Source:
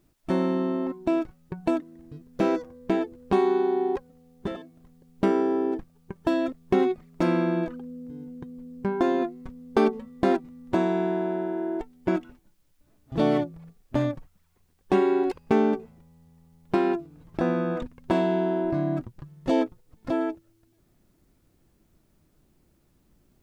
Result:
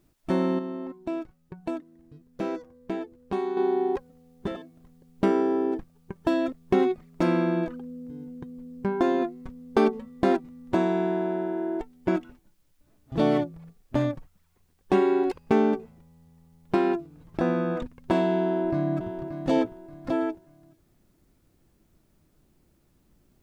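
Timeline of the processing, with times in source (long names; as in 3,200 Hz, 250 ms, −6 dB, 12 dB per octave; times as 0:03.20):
0:00.59–0:03.57: clip gain −7 dB
0:18.42–0:19.19: delay throw 580 ms, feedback 30%, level −9 dB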